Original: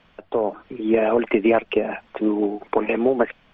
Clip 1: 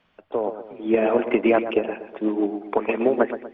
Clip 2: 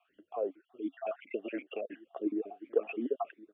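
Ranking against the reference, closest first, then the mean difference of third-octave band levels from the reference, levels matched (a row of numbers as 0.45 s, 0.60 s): 1, 2; 2.5 dB, 8.0 dB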